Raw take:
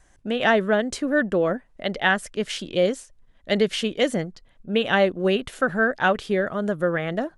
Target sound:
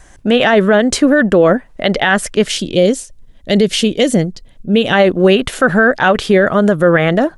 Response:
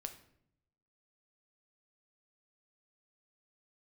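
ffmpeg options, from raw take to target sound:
-filter_complex "[0:a]asettb=1/sr,asplit=3[link_01][link_02][link_03];[link_01]atrim=end=2.484[link_04];[link_02]atrim=start=2.48:end=4.93,asetpts=PTS-STARTPTS,afade=type=in:duration=0.004:curve=qsin,afade=type=out:start_time=2.446:duration=0.004:curve=qsin,equalizer=frequency=1300:width_type=o:width=2.2:gain=-10.5[link_05];[link_03]atrim=start=4.926[link_06];[link_04][link_05]acrossfade=duration=0.004:curve1=hsin:curve2=qsin[link_07];[link_07][link_06]acrossfade=duration=0.004:curve1=qsin:curve2=hsin,alimiter=level_in=16dB:limit=-1dB:release=50:level=0:latency=1,volume=-1dB"

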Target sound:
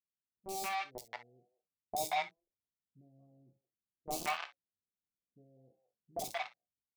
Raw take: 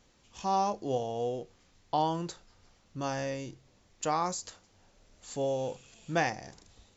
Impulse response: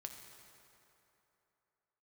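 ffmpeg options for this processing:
-filter_complex "[0:a]afwtdn=0.0158,highshelf=frequency=2900:gain=-4.5,asplit=2[link_01][link_02];[link_02]acompressor=threshold=-41dB:ratio=16,volume=2.5dB[link_03];[link_01][link_03]amix=inputs=2:normalize=0,asplit=3[link_04][link_05][link_06];[link_04]bandpass=frequency=730:width_type=q:width=8,volume=0dB[link_07];[link_05]bandpass=frequency=1090:width_type=q:width=8,volume=-6dB[link_08];[link_06]bandpass=frequency=2440:width_type=q:width=8,volume=-9dB[link_09];[link_07][link_08][link_09]amix=inputs=3:normalize=0,acrossover=split=280[link_10][link_11];[link_11]acrusher=bits=4:mix=0:aa=0.000001[link_12];[link_10][link_12]amix=inputs=2:normalize=0,acrossover=split=680|4200[link_13][link_14][link_15];[link_15]adelay=30[link_16];[link_14]adelay=180[link_17];[link_13][link_17][link_16]amix=inputs=3:normalize=0[link_18];[1:a]atrim=start_sample=2205,atrim=end_sample=3087[link_19];[link_18][link_19]afir=irnorm=-1:irlink=0,dynaudnorm=framelen=220:gausssize=11:maxgain=5dB"

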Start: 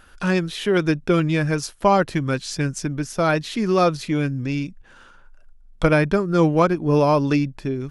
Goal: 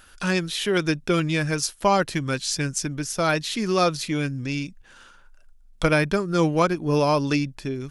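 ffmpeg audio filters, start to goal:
ffmpeg -i in.wav -af "highshelf=frequency=2500:gain=10.5,volume=-4dB" out.wav

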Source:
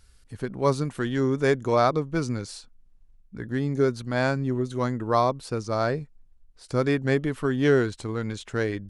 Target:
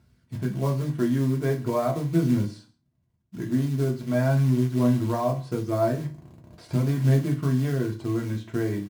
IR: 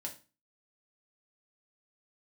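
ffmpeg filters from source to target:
-filter_complex "[0:a]asettb=1/sr,asplit=3[link_01][link_02][link_03];[link_01]atrim=end=5.984[link_04];[link_02]atrim=start=5.98:end=7.25,asetpts=PTS-STARTPTS,afade=type=in:duration=0.004:curve=qsin,afade=type=out:start_time=1.266:duration=0.004:curve=qsin,aeval=exprs='val(0)+0.5*0.0168*sgn(val(0))':channel_layout=same[link_05];[link_03]atrim=start=7.246[link_06];[link_04][link_05]acrossfade=duration=0.004:curve1=hsin:curve2=qsin[link_07];[link_07][link_06]acrossfade=duration=0.004:curve1=qsin:curve2=hsin,highpass=frequency=110:width=0.5412,highpass=frequency=110:width=1.3066,aemphasis=mode=reproduction:type=riaa,acompressor=threshold=-18dB:ratio=8,aphaser=in_gain=1:out_gain=1:delay=3.4:decay=0.27:speed=0.42:type=triangular,acrusher=bits=5:mode=log:mix=0:aa=0.000001,aecho=1:1:134:0.0708[link_08];[1:a]atrim=start_sample=2205,asetrate=48510,aresample=44100[link_09];[link_08][link_09]afir=irnorm=-1:irlink=0"

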